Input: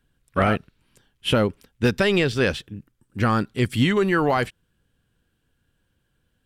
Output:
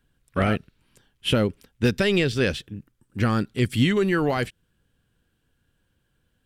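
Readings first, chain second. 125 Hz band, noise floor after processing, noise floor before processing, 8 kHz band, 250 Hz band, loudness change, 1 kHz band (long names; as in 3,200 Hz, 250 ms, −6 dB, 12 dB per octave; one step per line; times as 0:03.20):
0.0 dB, −72 dBFS, −71 dBFS, 0.0 dB, −0.5 dB, −1.5 dB, −5.5 dB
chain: dynamic equaliser 970 Hz, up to −7 dB, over −37 dBFS, Q 1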